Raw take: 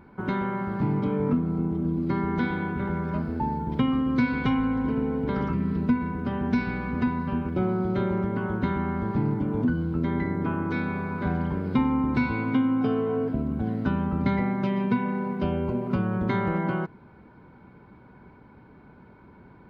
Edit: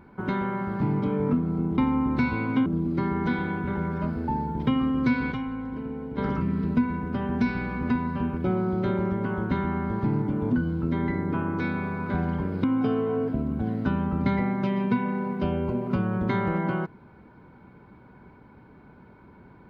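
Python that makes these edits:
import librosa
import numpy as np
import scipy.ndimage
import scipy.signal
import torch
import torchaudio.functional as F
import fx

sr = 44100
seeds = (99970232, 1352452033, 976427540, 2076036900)

y = fx.edit(x, sr, fx.clip_gain(start_s=4.44, length_s=0.86, db=-7.5),
    fx.move(start_s=11.76, length_s=0.88, to_s=1.78), tone=tone)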